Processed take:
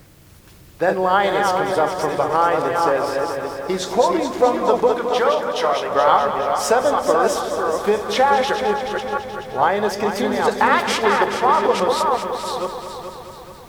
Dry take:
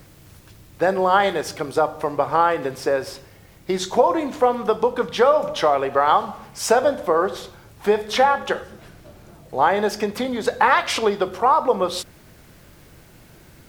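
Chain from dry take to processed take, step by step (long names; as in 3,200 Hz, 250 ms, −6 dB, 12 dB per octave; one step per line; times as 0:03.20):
delay that plays each chunk backwards 437 ms, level −4 dB
0:04.95–0:05.91: low-shelf EQ 480 Hz −9 dB
echo machine with several playback heads 214 ms, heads first and second, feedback 56%, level −11 dB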